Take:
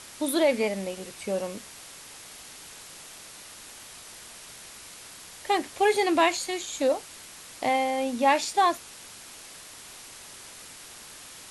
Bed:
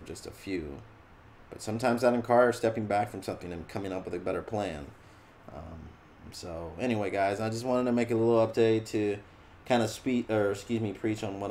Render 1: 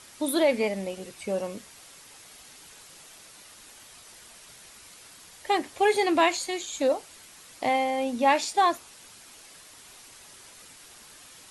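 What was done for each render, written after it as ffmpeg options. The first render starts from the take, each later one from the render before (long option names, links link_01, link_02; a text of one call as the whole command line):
ffmpeg -i in.wav -af "afftdn=noise_reduction=6:noise_floor=-46" out.wav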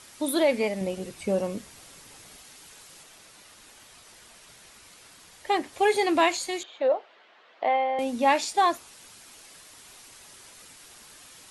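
ffmpeg -i in.wav -filter_complex "[0:a]asettb=1/sr,asplit=3[link_01][link_02][link_03];[link_01]atrim=end=0.814[link_04];[link_02]atrim=start=0.81:end=2.39,asetpts=PTS-STARTPTS,afade=type=in:duration=0.004:curve=qsin,afade=type=out:start_time=1.576:duration=0.004:curve=qsin,lowshelf=frequency=420:gain=7.5[link_05];[link_03]atrim=start=2.386[link_06];[link_04][link_05]acrossfade=duration=0.004:curve1=hsin:curve2=qsin[link_07];[link_07][link_06]acrossfade=duration=0.004:curve1=qsin:curve2=hsin,asettb=1/sr,asplit=3[link_08][link_09][link_10];[link_08]atrim=end=3.034[link_11];[link_09]atrim=start=3.03:end=5.73,asetpts=PTS-STARTPTS,afade=type=in:duration=0.004:curve=qsin,afade=type=out:start_time=2.696:duration=0.004:curve=qsin,highshelf=frequency=5300:gain=-4.5[link_12];[link_10]atrim=start=5.726[link_13];[link_11][link_12]acrossfade=duration=0.004:curve1=hsin:curve2=qsin[link_14];[link_14][link_13]acrossfade=duration=0.004:curve1=qsin:curve2=hsin,asettb=1/sr,asplit=3[link_15][link_16][link_17];[link_15]atrim=end=6.634[link_18];[link_16]atrim=start=6.63:end=7.99,asetpts=PTS-STARTPTS,afade=type=in:duration=0.004:curve=qsin,afade=type=out:start_time=1.356:duration=0.004:curve=qsin,highpass=frequency=290:width=0.5412,highpass=frequency=290:width=1.3066,equalizer=frequency=290:width_type=q:width=4:gain=-9,equalizer=frequency=660:width_type=q:width=4:gain=5,equalizer=frequency=2400:width_type=q:width=4:gain=-5,lowpass=frequency=3000:width=0.5412,lowpass=frequency=3000:width=1.3066[link_19];[link_17]atrim=start=7.986[link_20];[link_18][link_19]acrossfade=duration=0.004:curve1=hsin:curve2=qsin[link_21];[link_21][link_20]acrossfade=duration=0.004:curve1=qsin:curve2=hsin" out.wav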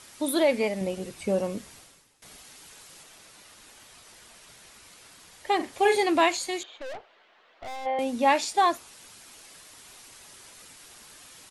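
ffmpeg -i in.wav -filter_complex "[0:a]asplit=3[link_01][link_02][link_03];[link_01]afade=type=out:start_time=5.59:duration=0.02[link_04];[link_02]asplit=2[link_05][link_06];[link_06]adelay=42,volume=-7.5dB[link_07];[link_05][link_07]amix=inputs=2:normalize=0,afade=type=in:start_time=5.59:duration=0.02,afade=type=out:start_time=6.02:duration=0.02[link_08];[link_03]afade=type=in:start_time=6.02:duration=0.02[link_09];[link_04][link_08][link_09]amix=inputs=3:normalize=0,asplit=3[link_10][link_11][link_12];[link_10]afade=type=out:start_time=6.76:duration=0.02[link_13];[link_11]aeval=exprs='(tanh(63.1*val(0)+0.65)-tanh(0.65))/63.1':channel_layout=same,afade=type=in:start_time=6.76:duration=0.02,afade=type=out:start_time=7.85:duration=0.02[link_14];[link_12]afade=type=in:start_time=7.85:duration=0.02[link_15];[link_13][link_14][link_15]amix=inputs=3:normalize=0,asplit=2[link_16][link_17];[link_16]atrim=end=2.22,asetpts=PTS-STARTPTS,afade=type=out:start_time=1.75:duration=0.47:curve=qua:silence=0.11885[link_18];[link_17]atrim=start=2.22,asetpts=PTS-STARTPTS,afade=type=in:duration=0.004:curve=hsin:silence=0.11885[link_19];[link_18][link_19]concat=n=2:v=0:a=1" out.wav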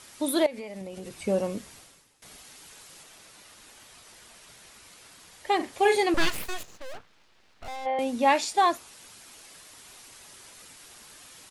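ffmpeg -i in.wav -filter_complex "[0:a]asettb=1/sr,asplit=3[link_01][link_02][link_03];[link_01]atrim=end=0.464[link_04];[link_02]atrim=start=0.46:end=1.27,asetpts=PTS-STARTPTS,afade=type=in:duration=0.004:curve=qsin,afade=type=out:start_time=0.806:duration=0.004:curve=qsin,acompressor=threshold=-34dB:ratio=10:attack=3.2:release=140:knee=1:detection=peak[link_05];[link_03]atrim=start=1.266[link_06];[link_04][link_05]acrossfade=duration=0.004:curve1=hsin:curve2=qsin[link_07];[link_07][link_06]acrossfade=duration=0.004:curve1=qsin:curve2=hsin,asettb=1/sr,asplit=3[link_08][link_09][link_10];[link_08]atrim=end=6.144[link_11];[link_09]atrim=start=6.14:end=7.68,asetpts=PTS-STARTPTS,afade=type=in:duration=0.004:curve=qsin,afade=type=out:start_time=1.536:duration=0.004:curve=qsin,aeval=exprs='abs(val(0))':channel_layout=same[link_12];[link_10]atrim=start=7.676[link_13];[link_11][link_12]acrossfade=duration=0.004:curve1=hsin:curve2=qsin[link_14];[link_14][link_13]acrossfade=duration=0.004:curve1=qsin:curve2=hsin" out.wav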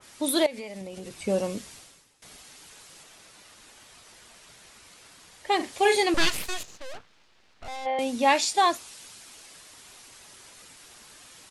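ffmpeg -i in.wav -af "lowpass=11000,adynamicequalizer=threshold=0.00708:dfrequency=2400:dqfactor=0.7:tfrequency=2400:tqfactor=0.7:attack=5:release=100:ratio=0.375:range=3:mode=boostabove:tftype=highshelf" out.wav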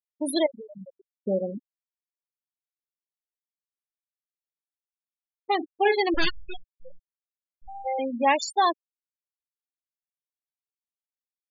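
ffmpeg -i in.wav -af "afftfilt=real='re*gte(hypot(re,im),0.112)':imag='im*gte(hypot(re,im),0.112)':win_size=1024:overlap=0.75" out.wav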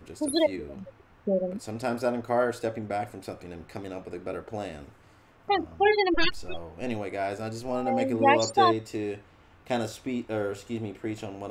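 ffmpeg -i in.wav -i bed.wav -filter_complex "[1:a]volume=-2.5dB[link_01];[0:a][link_01]amix=inputs=2:normalize=0" out.wav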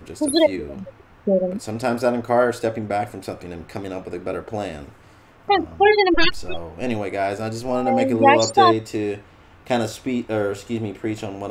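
ffmpeg -i in.wav -af "volume=7.5dB,alimiter=limit=-3dB:level=0:latency=1" out.wav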